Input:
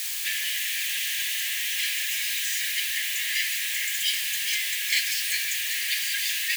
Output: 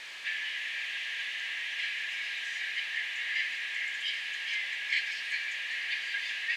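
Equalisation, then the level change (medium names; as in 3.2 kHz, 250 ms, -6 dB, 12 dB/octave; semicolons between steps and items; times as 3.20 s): low-pass 2.7 kHz 12 dB/octave; tilt shelf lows +5 dB, about 1.5 kHz; 0.0 dB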